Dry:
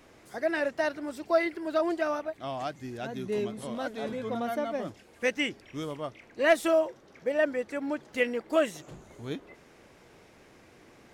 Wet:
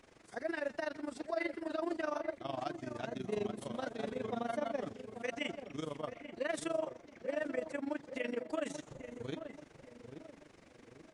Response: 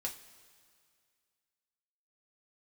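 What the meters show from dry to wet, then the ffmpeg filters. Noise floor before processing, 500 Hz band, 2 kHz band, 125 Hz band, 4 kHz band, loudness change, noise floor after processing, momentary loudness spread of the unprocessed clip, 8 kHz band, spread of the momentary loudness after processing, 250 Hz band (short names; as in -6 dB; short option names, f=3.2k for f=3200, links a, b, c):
-57 dBFS, -9.5 dB, -10.5 dB, -5.0 dB, -9.0 dB, -9.5 dB, -61 dBFS, 13 LU, -6.5 dB, 15 LU, -7.0 dB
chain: -filter_complex "[0:a]alimiter=limit=-23.5dB:level=0:latency=1:release=21,asplit=2[a][b];[b]aecho=0:1:135:0.1[c];[a][c]amix=inputs=2:normalize=0,tremolo=f=24:d=0.889,asplit=2[d][e];[e]adelay=836,lowpass=f=1.1k:p=1,volume=-8.5dB,asplit=2[f][g];[g]adelay=836,lowpass=f=1.1k:p=1,volume=0.43,asplit=2[h][i];[i]adelay=836,lowpass=f=1.1k:p=1,volume=0.43,asplit=2[j][k];[k]adelay=836,lowpass=f=1.1k:p=1,volume=0.43,asplit=2[l][m];[m]adelay=836,lowpass=f=1.1k:p=1,volume=0.43[n];[f][h][j][l][n]amix=inputs=5:normalize=0[o];[d][o]amix=inputs=2:normalize=0,volume=-2dB" -ar 22050 -c:a libvorbis -b:a 48k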